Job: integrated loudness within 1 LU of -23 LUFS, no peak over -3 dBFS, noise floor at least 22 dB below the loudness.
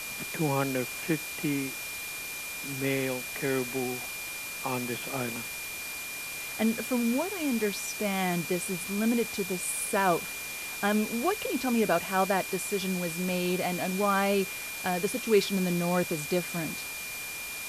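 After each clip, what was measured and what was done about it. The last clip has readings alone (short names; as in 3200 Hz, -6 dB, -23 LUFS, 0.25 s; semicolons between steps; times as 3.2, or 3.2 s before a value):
steady tone 2400 Hz; tone level -38 dBFS; noise floor -38 dBFS; noise floor target -52 dBFS; loudness -29.5 LUFS; peak -11.5 dBFS; loudness target -23.0 LUFS
-> notch 2400 Hz, Q 30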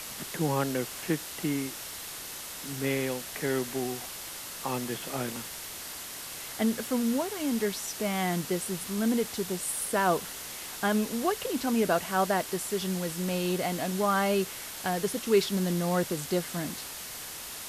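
steady tone none; noise floor -41 dBFS; noise floor target -53 dBFS
-> denoiser 12 dB, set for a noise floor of -41 dBFS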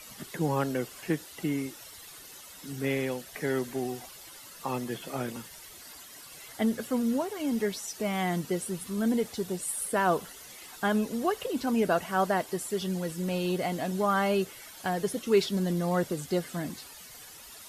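noise floor -48 dBFS; noise floor target -53 dBFS
-> denoiser 6 dB, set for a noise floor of -48 dBFS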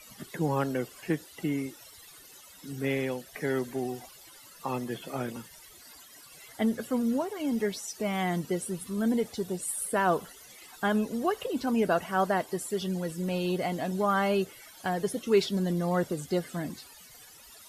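noise floor -52 dBFS; noise floor target -53 dBFS
-> denoiser 6 dB, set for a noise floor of -52 dBFS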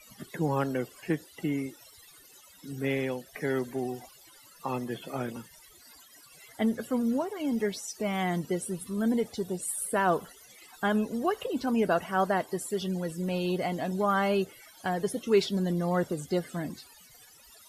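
noise floor -55 dBFS; loudness -30.5 LUFS; peak -13.0 dBFS; loudness target -23.0 LUFS
-> gain +7.5 dB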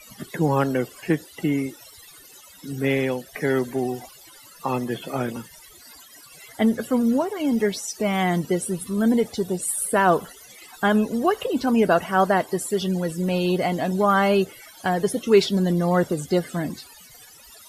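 loudness -23.0 LUFS; peak -5.5 dBFS; noise floor -48 dBFS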